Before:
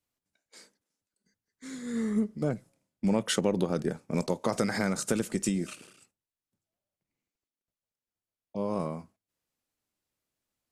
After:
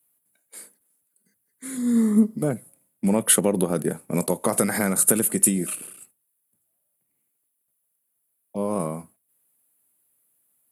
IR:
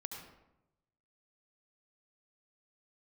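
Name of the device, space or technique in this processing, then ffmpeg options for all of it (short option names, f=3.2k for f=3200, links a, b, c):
budget condenser microphone: -filter_complex "[0:a]highpass=110,highshelf=f=7.9k:t=q:w=3:g=13.5,asettb=1/sr,asplit=3[a][b][c];[a]atrim=end=1.774[d];[b]atrim=start=1.77:end=2.39,asetpts=PTS-STARTPTS,afade=t=in:d=0.004:c=qsin,afade=t=out:st=0.616:d=0.004:c=qsin,equalizer=f=250:t=o:w=0.33:g=11,equalizer=f=1k:t=o:w=0.33:g=5,equalizer=f=1.6k:t=o:w=0.33:g=-6,equalizer=f=2.5k:t=o:w=0.33:g=-11,equalizer=f=5k:t=o:w=0.33:g=6,equalizer=f=10k:t=o:w=0.33:g=-8[e];[c]atrim=start=2.386[f];[d][e]acrossfade=d=0.004:c1=hsin:c2=qsin[g];[g][f]acrossfade=d=0.004:c1=qsin:c2=hsin,volume=5.5dB"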